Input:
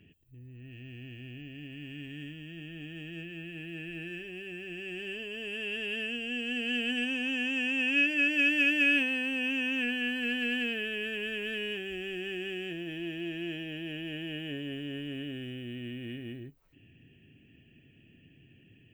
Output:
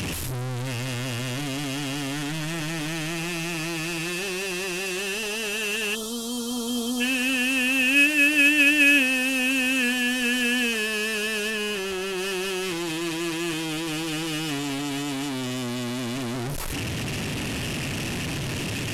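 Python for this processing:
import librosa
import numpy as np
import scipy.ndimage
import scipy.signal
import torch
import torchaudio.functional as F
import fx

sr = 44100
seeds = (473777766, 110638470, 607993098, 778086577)

y = fx.delta_mod(x, sr, bps=64000, step_db=-30.5)
y = fx.spec_box(y, sr, start_s=5.95, length_s=1.06, low_hz=1400.0, high_hz=3100.0, gain_db=-26)
y = fx.peak_eq(y, sr, hz=8800.0, db=-4.0, octaves=2.6, at=(11.5, 12.18))
y = F.gain(torch.from_numpy(y), 7.5).numpy()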